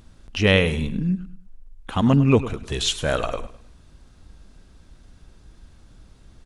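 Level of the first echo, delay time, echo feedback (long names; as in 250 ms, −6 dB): −14.5 dB, 103 ms, 32%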